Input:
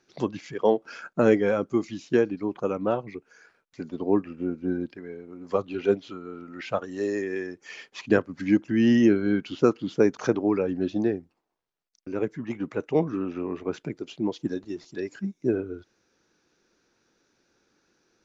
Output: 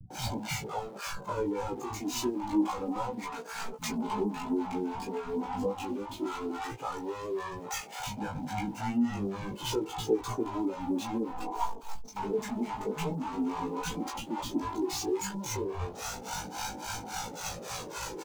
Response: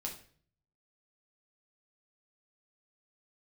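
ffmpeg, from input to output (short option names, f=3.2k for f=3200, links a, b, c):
-filter_complex "[0:a]aeval=exprs='val(0)+0.5*0.0794*sgn(val(0))':c=same,anlmdn=100,acrossover=split=300[a][b];[b]acompressor=threshold=-33dB:ratio=6[c];[a][c]amix=inputs=2:normalize=0,adynamicequalizer=threshold=0.00562:dfrequency=1100:dqfactor=3.1:tfrequency=1100:tqfactor=3.1:attack=5:release=100:ratio=0.375:range=3.5:mode=boostabove:tftype=bell,acrossover=split=620[d][e];[d]aeval=exprs='val(0)*(1-1/2+1/2*cos(2*PI*3.6*n/s))':c=same[f];[e]aeval=exprs='val(0)*(1-1/2-1/2*cos(2*PI*3.6*n/s))':c=same[g];[f][g]amix=inputs=2:normalize=0,flanger=delay=1.3:depth=3.4:regen=-2:speed=0.12:shape=sinusoidal,superequalizer=9b=3.55:11b=0.631:15b=1.58,flanger=delay=17.5:depth=2.9:speed=0.28,acrossover=split=290[h][i];[h]aeval=exprs='val(0)*gte(abs(val(0)),0.00141)':c=same[j];[i]asplit=2[k][l];[l]adelay=16,volume=-3.5dB[m];[k][m]amix=inputs=2:normalize=0[n];[j][n]amix=inputs=2:normalize=0,acrossover=split=170[o][p];[p]adelay=100[q];[o][q]amix=inputs=2:normalize=0,volume=4dB"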